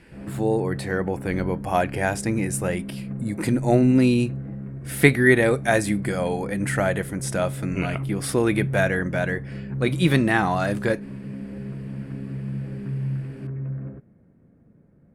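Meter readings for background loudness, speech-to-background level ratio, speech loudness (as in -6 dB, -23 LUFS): -32.5 LUFS, 9.5 dB, -23.0 LUFS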